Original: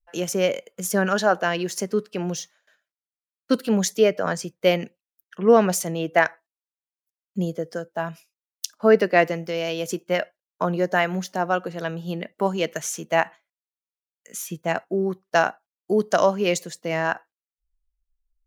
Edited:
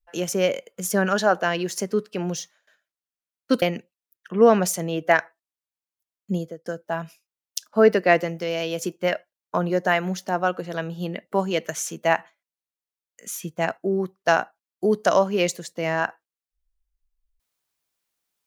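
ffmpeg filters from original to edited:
-filter_complex "[0:a]asplit=3[a][b][c];[a]atrim=end=3.622[d];[b]atrim=start=4.688:end=7.73,asetpts=PTS-STARTPTS,afade=t=out:st=2.722:d=0.32[e];[c]atrim=start=7.73,asetpts=PTS-STARTPTS,afade=t=in:d=0.004:c=hsin[f];[e][f]concat=n=2:v=0:a=1[g];[d][g]acrossfade=d=0.004:c1=hsin:c2=hsin"

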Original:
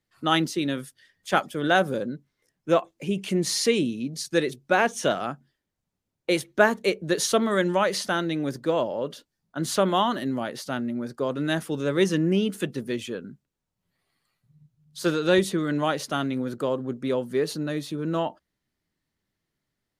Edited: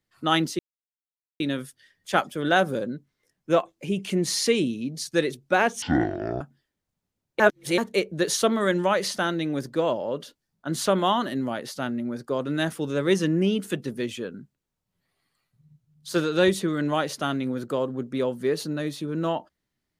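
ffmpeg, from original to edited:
-filter_complex "[0:a]asplit=6[a][b][c][d][e][f];[a]atrim=end=0.59,asetpts=PTS-STARTPTS,afade=t=out:st=0.586:d=0.004:c=hsin,apad=pad_dur=0.81[g];[b]atrim=start=0.59:end=5.014,asetpts=PTS-STARTPTS,afade=t=in:d=0.004:c=hsin[h];[c]atrim=start=5.01:end=5.31,asetpts=PTS-STARTPTS,asetrate=22491,aresample=44100,atrim=end_sample=25941,asetpts=PTS-STARTPTS[i];[d]atrim=start=5.306:end=6.302[j];[e]atrim=start=6.298:end=6.682,asetpts=PTS-STARTPTS,areverse[k];[f]atrim=start=6.678[l];[g][h]concat=n=2:v=0:a=1[m];[m][i]acrossfade=d=0.004:c1=hsin:c2=hsin[n];[n][j]acrossfade=d=0.004:c1=hsin:c2=hsin[o];[o][k]acrossfade=d=0.004:c1=hsin:c2=hsin[p];[p][l]acrossfade=d=0.004:c1=hsin:c2=hsin"

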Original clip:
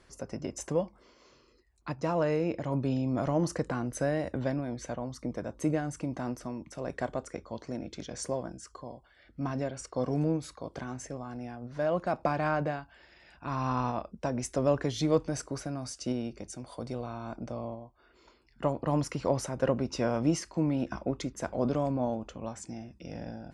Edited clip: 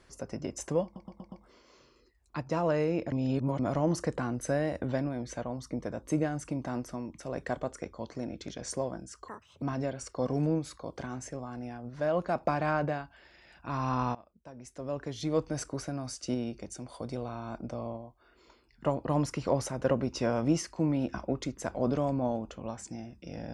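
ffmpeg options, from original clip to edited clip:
-filter_complex "[0:a]asplit=10[a][b][c][d][e][f][g][h][i][j];[a]atrim=end=0.962[k];[b]atrim=start=0.838:end=0.962[l];[c]atrim=start=0.838:end=0.962[m];[d]atrim=start=0.838:end=0.962[n];[e]atrim=start=0.838:end=2.642[o];[f]atrim=start=2.638:end=3.112,asetpts=PTS-STARTPTS,areverse[p];[g]atrim=start=3.108:end=8.804[q];[h]atrim=start=8.8:end=9.4,asetpts=PTS-STARTPTS,asetrate=77616,aresample=44100,atrim=end_sample=15034,asetpts=PTS-STARTPTS[r];[i]atrim=start=9.396:end=13.93,asetpts=PTS-STARTPTS,afade=t=out:st=4.53:d=0.004:c=hsin:silence=0.1[s];[j]atrim=start=13.93,asetpts=PTS-STARTPTS,afade=t=in:d=1.48:c=qua:silence=0.1[t];[k][l]acrossfade=d=0.004:c1=hsin:c2=hsin[u];[u][m]acrossfade=d=0.004:c1=hsin:c2=hsin[v];[v][n]acrossfade=d=0.004:c1=hsin:c2=hsin[w];[w][o]acrossfade=d=0.004:c1=hsin:c2=hsin[x];[x][p]acrossfade=d=0.004:c1=hsin:c2=hsin[y];[y][q]acrossfade=d=0.004:c1=hsin:c2=hsin[z];[z][r]acrossfade=d=0.004:c1=hsin:c2=hsin[aa];[s][t]concat=n=2:v=0:a=1[ab];[aa][ab]acrossfade=d=0.004:c1=hsin:c2=hsin"

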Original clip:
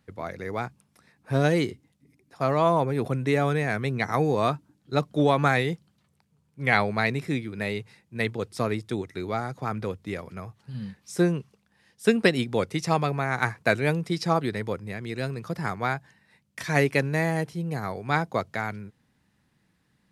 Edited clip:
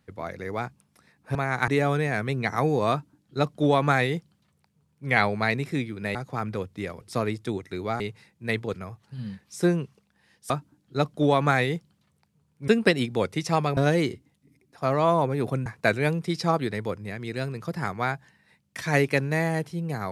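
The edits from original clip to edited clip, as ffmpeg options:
-filter_complex "[0:a]asplit=11[a][b][c][d][e][f][g][h][i][j][k];[a]atrim=end=1.352[l];[b]atrim=start=13.148:end=13.482[m];[c]atrim=start=3.238:end=7.712[n];[d]atrim=start=9.438:end=10.302[o];[e]atrim=start=8.448:end=9.442[p];[f]atrim=start=7.708:end=8.452[q];[g]atrim=start=10.298:end=12.062[r];[h]atrim=start=4.468:end=6.652[s];[i]atrim=start=12.058:end=13.152[t];[j]atrim=start=1.348:end=3.242[u];[k]atrim=start=13.478[v];[l][m]acrossfade=d=0.004:c1=hsin:c2=hsin[w];[w][n]acrossfade=d=0.004:c1=hsin:c2=hsin[x];[x][o]acrossfade=d=0.004:c1=hsin:c2=hsin[y];[y][p]acrossfade=d=0.004:c1=hsin:c2=hsin[z];[z][q]acrossfade=d=0.004:c1=hsin:c2=hsin[aa];[aa][r]acrossfade=d=0.004:c1=hsin:c2=hsin[ab];[ab][s]acrossfade=d=0.004:c1=hsin:c2=hsin[ac];[ac][t]acrossfade=d=0.004:c1=hsin:c2=hsin[ad];[ad][u]acrossfade=d=0.004:c1=hsin:c2=hsin[ae];[ae][v]acrossfade=d=0.004:c1=hsin:c2=hsin"

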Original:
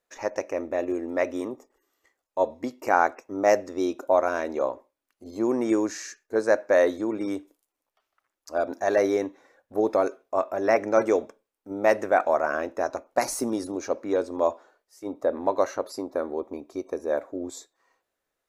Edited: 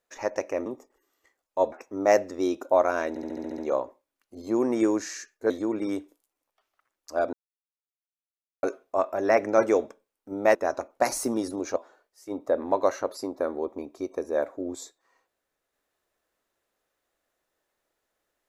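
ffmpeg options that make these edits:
-filter_complex "[0:a]asplit=15[a][b][c][d][e][f][g][h][i][j][k][l][m][n][o];[a]atrim=end=0.662[p];[b]atrim=start=1.458:end=2.522[q];[c]atrim=start=3.098:end=4.542[r];[d]atrim=start=4.468:end=4.542[s];[e]atrim=start=4.468:end=4.542[t];[f]atrim=start=4.468:end=4.542[u];[g]atrim=start=4.468:end=4.542[v];[h]atrim=start=4.468:end=4.542[w];[i]atrim=start=4.468:end=4.542[x];[j]atrim=start=4.468:end=6.392[y];[k]atrim=start=6.888:end=8.72,asetpts=PTS-STARTPTS,afade=t=out:st=1.828:d=0.004:c=hsin[z];[l]atrim=start=8.72:end=10.02,asetpts=PTS-STARTPTS,volume=0[aa];[m]atrim=start=10.02:end=11.942,asetpts=PTS-STARTPTS,afade=t=in:d=0.004:c=hsin[ab];[n]atrim=start=12.708:end=13.922[ac];[o]atrim=start=14.508[ad];[p][q]acrossfade=d=0.004:c1=hsin:c2=hsin[ae];[ae][r]acrossfade=d=0.004:c1=hsin:c2=hsin[af];[af][s]acrossfade=d=0.004:c1=hsin:c2=hsin[ag];[ag][t]acrossfade=d=0.004:c1=hsin:c2=hsin[ah];[ah][u]acrossfade=d=0.004:c1=hsin:c2=hsin[ai];[ai][v]acrossfade=d=0.004:c1=hsin:c2=hsin[aj];[aj][w]acrossfade=d=0.004:c1=hsin:c2=hsin[ak];[ak][x]acrossfade=d=0.004:c1=hsin:c2=hsin[al];[al][y]acrossfade=d=0.004:c1=hsin:c2=hsin[am];[z][aa][ab]concat=n=3:v=0:a=1[an];[am][an]acrossfade=d=0.004:c1=hsin:c2=hsin[ao];[ao][ac]acrossfade=d=0.004:c1=hsin:c2=hsin[ap];[ap][ad]acrossfade=d=0.004:c1=hsin:c2=hsin"

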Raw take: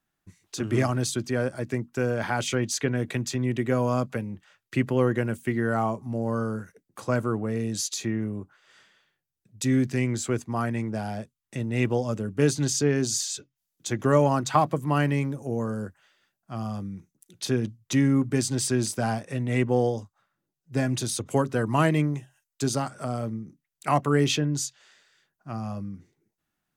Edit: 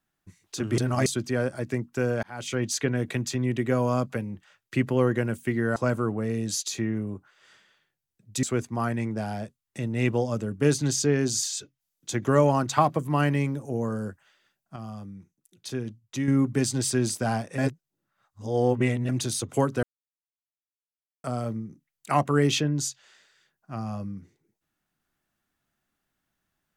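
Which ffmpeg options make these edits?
-filter_complex "[0:a]asplit=12[a][b][c][d][e][f][g][h][i][j][k][l];[a]atrim=end=0.782[m];[b]atrim=start=0.778:end=1.062,asetpts=PTS-STARTPTS,areverse[n];[c]atrim=start=1.058:end=2.23,asetpts=PTS-STARTPTS,afade=t=out:st=1.168:d=0.004:c=hsin[o];[d]atrim=start=2.23:end=5.762,asetpts=PTS-STARTPTS,afade=t=in:d=0.43[p];[e]atrim=start=7.018:end=9.692[q];[f]atrim=start=10.198:end=16.532[r];[g]atrim=start=16.528:end=18.052,asetpts=PTS-STARTPTS,volume=-6.5dB[s];[h]atrim=start=18.048:end=19.352[t];[i]atrim=start=19.348:end=20.862,asetpts=PTS-STARTPTS,areverse[u];[j]atrim=start=20.858:end=21.6,asetpts=PTS-STARTPTS,afade=t=out:st=0.738:d=0.004:c=hsin[v];[k]atrim=start=21.6:end=23.01,asetpts=PTS-STARTPTS,volume=0[w];[l]atrim=start=23.01,asetpts=PTS-STARTPTS,afade=t=in:d=0.004:c=hsin[x];[m][n]acrossfade=d=0.004:c1=hsin:c2=hsin[y];[o][p]concat=n=2:v=0:a=1[z];[y][z]acrossfade=d=0.004:c1=hsin:c2=hsin[aa];[aa][q]acrossfade=d=0.004:c1=hsin:c2=hsin[ab];[ab][r]acrossfade=d=0.004:c1=hsin:c2=hsin[ac];[ac][s]acrossfade=d=0.004:c1=hsin:c2=hsin[ad];[ad][t]acrossfade=d=0.004:c1=hsin:c2=hsin[ae];[ae][u]acrossfade=d=0.004:c1=hsin:c2=hsin[af];[v][w][x]concat=n=3:v=0:a=1[ag];[af][ag]acrossfade=d=0.004:c1=hsin:c2=hsin"

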